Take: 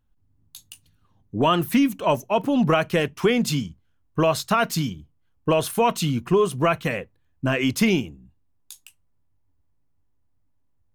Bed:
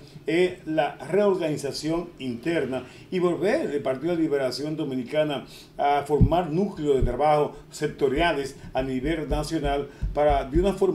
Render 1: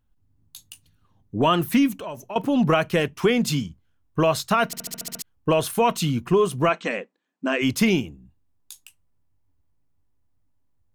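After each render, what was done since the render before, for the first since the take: 1.96–2.36 s: compression 5:1, threshold -31 dBFS; 4.66 s: stutter in place 0.07 s, 8 plays; 6.69–7.62 s: brick-wall FIR band-pass 180–8500 Hz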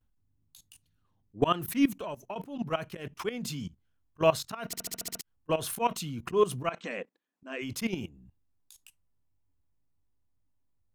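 level held to a coarse grid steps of 18 dB; slow attack 110 ms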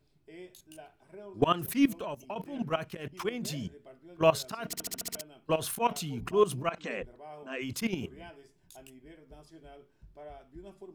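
add bed -26.5 dB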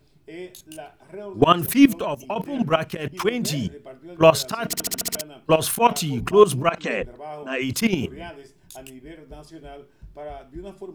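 trim +11 dB; peak limiter -2 dBFS, peak gain reduction 3 dB

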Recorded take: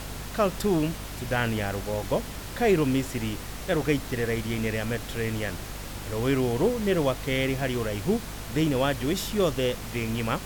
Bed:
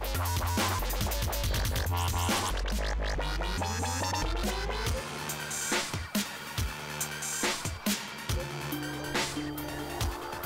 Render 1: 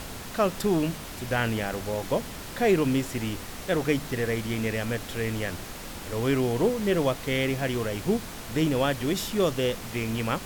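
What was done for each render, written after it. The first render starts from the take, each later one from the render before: de-hum 50 Hz, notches 3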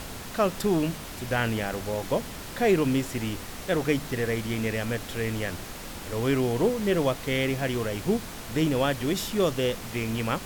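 no audible change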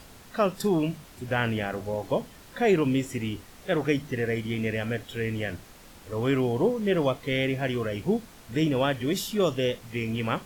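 noise print and reduce 11 dB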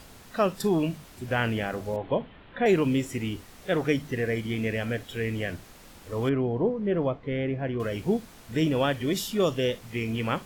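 1.96–2.66 s: steep low-pass 3.5 kHz 48 dB/octave; 6.29–7.80 s: tape spacing loss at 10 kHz 40 dB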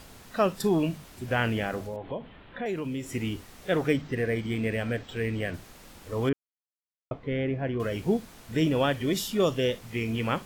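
1.83–3.14 s: compression 2:1, threshold -36 dBFS; 3.89–5.54 s: decimation joined by straight lines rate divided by 4×; 6.33–7.11 s: mute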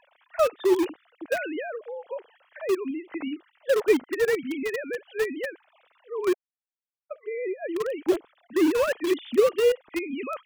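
formants replaced by sine waves; in parallel at -9.5 dB: bit crusher 4-bit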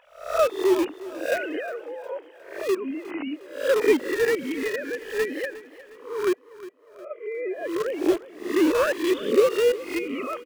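reverse spectral sustain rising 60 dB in 0.49 s; feedback delay 359 ms, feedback 47%, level -17 dB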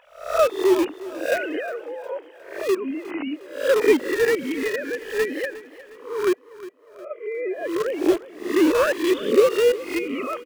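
trim +2.5 dB

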